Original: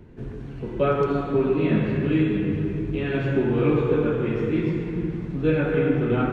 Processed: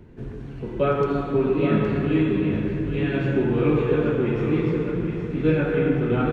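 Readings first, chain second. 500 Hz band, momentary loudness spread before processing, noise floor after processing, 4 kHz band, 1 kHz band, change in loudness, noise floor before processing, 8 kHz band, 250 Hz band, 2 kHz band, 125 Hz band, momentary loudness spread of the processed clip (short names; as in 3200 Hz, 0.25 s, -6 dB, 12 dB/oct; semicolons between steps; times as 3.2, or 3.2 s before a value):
+0.5 dB, 7 LU, -36 dBFS, +0.5 dB, +0.5 dB, +0.5 dB, -36 dBFS, n/a, +0.5 dB, +0.5 dB, +0.5 dB, 6 LU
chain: echo 0.817 s -7 dB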